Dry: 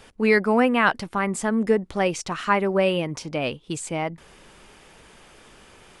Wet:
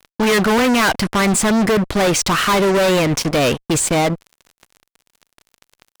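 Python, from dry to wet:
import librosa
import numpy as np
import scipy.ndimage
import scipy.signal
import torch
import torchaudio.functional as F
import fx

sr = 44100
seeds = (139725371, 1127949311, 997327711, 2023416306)

y = fx.fuzz(x, sr, gain_db=34.0, gate_db=-41.0)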